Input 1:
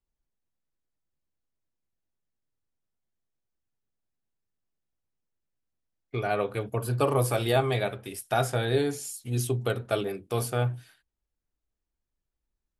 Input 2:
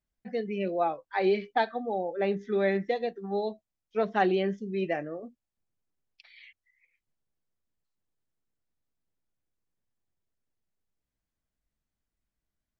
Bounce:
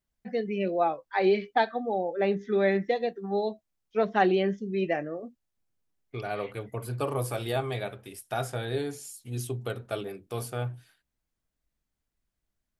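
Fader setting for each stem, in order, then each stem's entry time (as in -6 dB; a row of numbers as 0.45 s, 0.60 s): -5.5 dB, +2.0 dB; 0.00 s, 0.00 s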